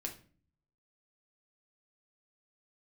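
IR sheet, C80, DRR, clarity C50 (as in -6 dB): 17.0 dB, 1.5 dB, 11.5 dB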